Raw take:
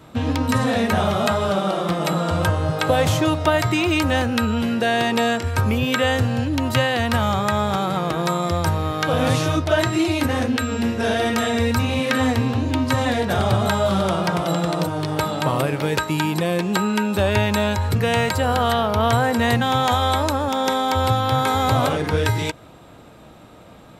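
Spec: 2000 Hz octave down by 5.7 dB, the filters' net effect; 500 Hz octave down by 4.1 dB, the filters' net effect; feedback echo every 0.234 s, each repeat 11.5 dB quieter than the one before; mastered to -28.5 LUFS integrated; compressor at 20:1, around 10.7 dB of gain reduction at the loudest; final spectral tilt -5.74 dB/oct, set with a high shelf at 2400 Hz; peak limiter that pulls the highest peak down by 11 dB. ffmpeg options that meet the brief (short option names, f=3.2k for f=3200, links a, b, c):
-af "equalizer=f=500:t=o:g=-4.5,equalizer=f=2k:t=o:g=-4.5,highshelf=f=2.4k:g=-5.5,acompressor=threshold=-26dB:ratio=20,alimiter=limit=-24dB:level=0:latency=1,aecho=1:1:234|468|702:0.266|0.0718|0.0194,volume=4.5dB"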